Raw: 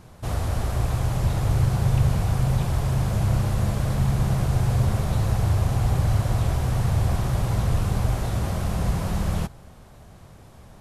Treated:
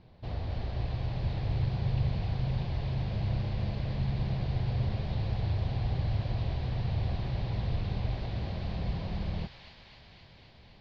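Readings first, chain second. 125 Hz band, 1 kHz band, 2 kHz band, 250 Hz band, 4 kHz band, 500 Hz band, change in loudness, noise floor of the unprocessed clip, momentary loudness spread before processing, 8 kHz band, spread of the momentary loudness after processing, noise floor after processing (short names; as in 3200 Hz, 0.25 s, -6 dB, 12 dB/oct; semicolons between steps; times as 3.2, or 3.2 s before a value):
-9.0 dB, -11.5 dB, -9.5 dB, -9.0 dB, -6.5 dB, -9.5 dB, -9.0 dB, -47 dBFS, 5 LU, under -25 dB, 5 LU, -55 dBFS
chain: elliptic low-pass 4500 Hz, stop band 60 dB; bell 1300 Hz -10.5 dB 0.66 oct; thin delay 0.259 s, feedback 77%, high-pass 1800 Hz, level -3 dB; gain -8 dB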